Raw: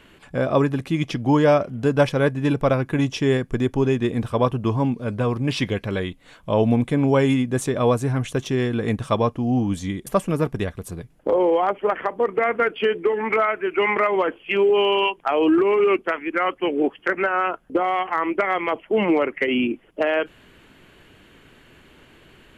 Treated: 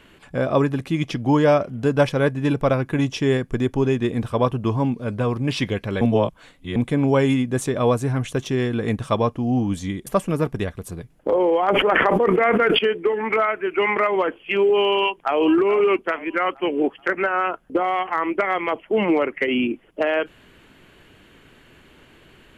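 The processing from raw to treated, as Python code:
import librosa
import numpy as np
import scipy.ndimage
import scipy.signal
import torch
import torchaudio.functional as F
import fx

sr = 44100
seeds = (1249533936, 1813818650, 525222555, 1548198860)

y = fx.env_flatten(x, sr, amount_pct=100, at=(11.68, 12.79))
y = fx.echo_throw(y, sr, start_s=14.96, length_s=0.42, ms=430, feedback_pct=45, wet_db=-13.0)
y = fx.edit(y, sr, fx.reverse_span(start_s=6.01, length_s=0.75), tone=tone)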